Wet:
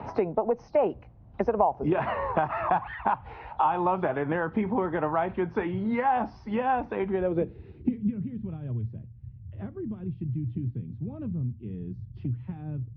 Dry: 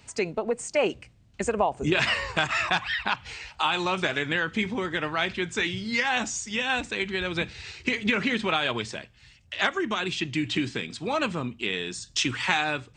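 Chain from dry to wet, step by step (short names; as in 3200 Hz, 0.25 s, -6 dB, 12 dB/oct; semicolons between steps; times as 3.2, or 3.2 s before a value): nonlinear frequency compression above 3200 Hz 1.5:1; low-pass sweep 860 Hz -> 100 Hz, 7.05–8.35; three-band squash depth 70%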